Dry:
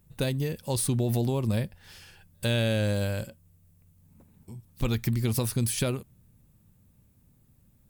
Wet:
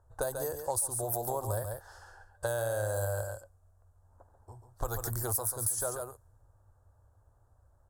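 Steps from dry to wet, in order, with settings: level-controlled noise filter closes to 2.7 kHz, open at -23 dBFS; FFT filter 100 Hz 0 dB, 180 Hz -28 dB, 320 Hz -8 dB, 700 Hz +10 dB, 1.6 kHz +4 dB, 2.3 kHz -27 dB, 7.1 kHz +9 dB, 12 kHz +14 dB; delay 139 ms -9 dB; compression 6:1, threshold -29 dBFS, peak gain reduction 13 dB

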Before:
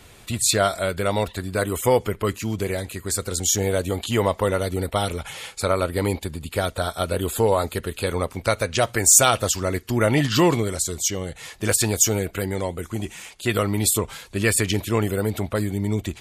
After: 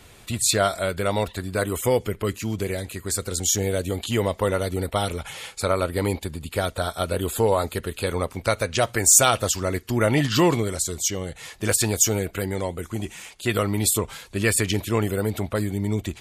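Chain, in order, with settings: 1.80–4.41 s: dynamic bell 1 kHz, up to -6 dB, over -35 dBFS, Q 1.2; trim -1 dB

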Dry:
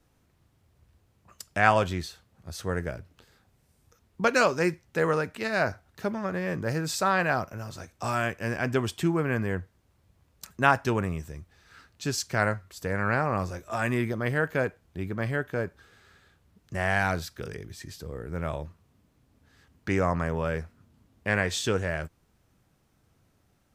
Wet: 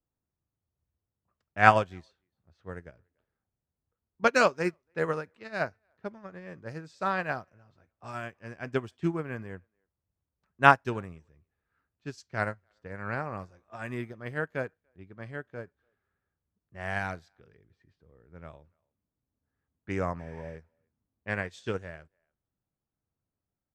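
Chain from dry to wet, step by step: spectral replace 20.22–20.53 s, 1–11 kHz after; level-controlled noise filter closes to 1.5 kHz, open at -23.5 dBFS; treble shelf 9.3 kHz -9 dB; speakerphone echo 290 ms, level -25 dB; upward expansion 2.5:1, over -35 dBFS; trim +5 dB

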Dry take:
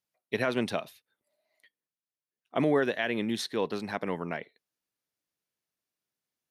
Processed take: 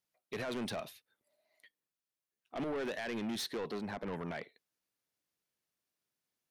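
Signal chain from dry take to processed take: 3.72–4.13 s: treble shelf 2.5 kHz -11 dB; peak limiter -22 dBFS, peak gain reduction 7.5 dB; saturation -33.5 dBFS, distortion -8 dB

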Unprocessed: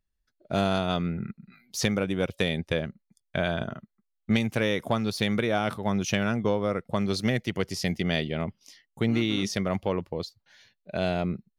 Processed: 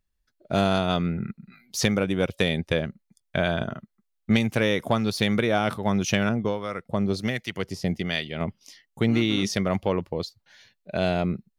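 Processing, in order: 6.29–8.41 s: harmonic tremolo 1.3 Hz, depth 70%, crossover 960 Hz; trim +3 dB

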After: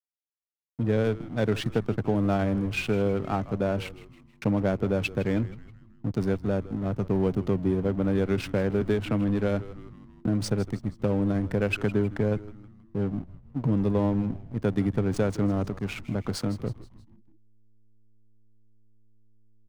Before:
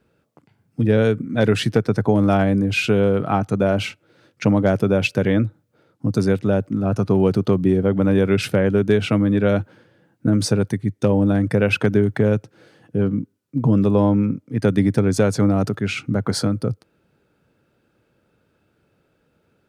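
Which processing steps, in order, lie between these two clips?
hysteresis with a dead band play -24 dBFS; frequency-shifting echo 159 ms, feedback 49%, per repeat -110 Hz, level -16 dB; 8.81–10.26 s: three bands compressed up and down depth 40%; trim -8 dB

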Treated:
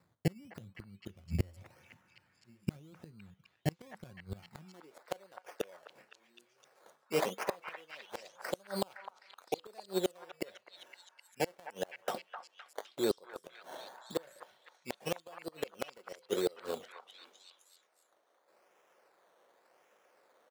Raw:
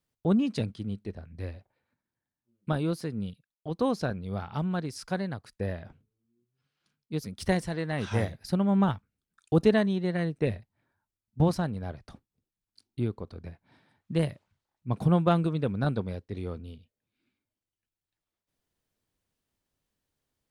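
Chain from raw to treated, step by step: comb 5.5 ms, depth 34%; reverse; compression 6:1, threshold -36 dBFS, peak gain reduction 19 dB; reverse; flange 0.26 Hz, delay 6.7 ms, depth 4.5 ms, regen -73%; decimation with a swept rate 14×, swing 60% 0.89 Hz; high-pass sweep 92 Hz -> 520 Hz, 4.33–4.96 s; inverted gate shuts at -36 dBFS, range -32 dB; repeats whose band climbs or falls 257 ms, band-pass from 1.2 kHz, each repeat 0.7 oct, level -3.5 dB; trim +18 dB

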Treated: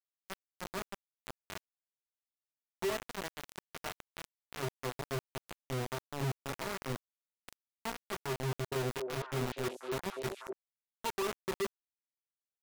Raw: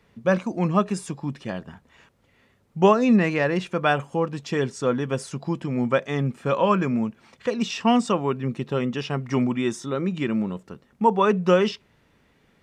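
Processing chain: low-pass that closes with the level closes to 1.1 kHz, closed at -20 dBFS; bass shelf 160 Hz -7.5 dB; compression 8:1, threshold -24 dBFS, peak gain reduction 11.5 dB; distance through air 110 m; feedback comb 130 Hz, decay 0.19 s, harmonics odd, mix 90%; transient shaper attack -4 dB, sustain 0 dB; band-stop 550 Hz, Q 12; word length cut 6-bit, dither none; 8.47–10.53 s: repeats whose band climbs or falls 244 ms, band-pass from 450 Hz, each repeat 1.4 oct, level -1.5 dB; trim +1.5 dB

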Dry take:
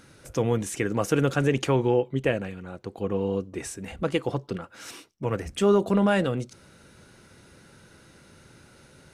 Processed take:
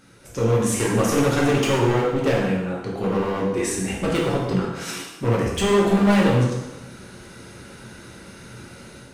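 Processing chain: level rider gain up to 9 dB; hard clipper -18 dBFS, distortion -6 dB; plate-style reverb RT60 1.1 s, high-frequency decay 0.85×, DRR -4 dB; trim -3 dB

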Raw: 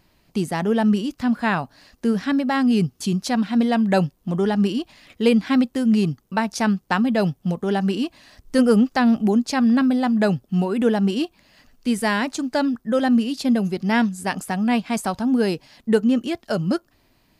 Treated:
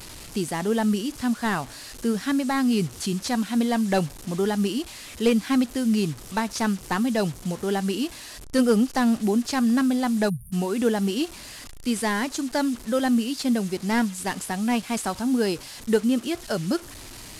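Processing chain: one-bit delta coder 64 kbps, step -34.5 dBFS; peaking EQ 630 Hz -3 dB 1 oct; spectral selection erased 10.29–10.53 s, 210–8900 Hz; FFT filter 110 Hz 0 dB, 170 Hz -6 dB, 350 Hz -1 dB, 2.2 kHz -2 dB, 8.4 kHz +4 dB

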